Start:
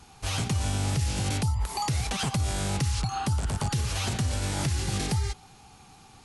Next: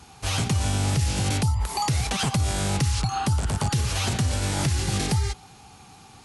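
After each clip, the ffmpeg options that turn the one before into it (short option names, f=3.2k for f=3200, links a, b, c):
-af "highpass=45,volume=4dB"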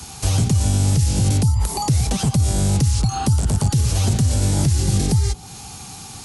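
-filter_complex "[0:a]bass=f=250:g=5,treble=f=4k:g=12,acrossover=split=110|720[a][b][c];[a]acompressor=threshold=-26dB:ratio=4[d];[b]acompressor=threshold=-28dB:ratio=4[e];[c]acompressor=threshold=-37dB:ratio=4[f];[d][e][f]amix=inputs=3:normalize=0,volume=7.5dB"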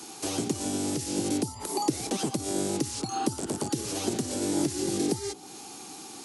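-af "highpass=f=320:t=q:w=3.9,volume=-7dB"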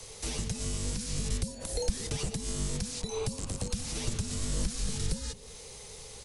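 -filter_complex "[0:a]asplit=2[a][b];[b]adelay=204.1,volume=-18dB,highshelf=f=4k:g=-4.59[c];[a][c]amix=inputs=2:normalize=0,afreqshift=-340,volume=-3dB"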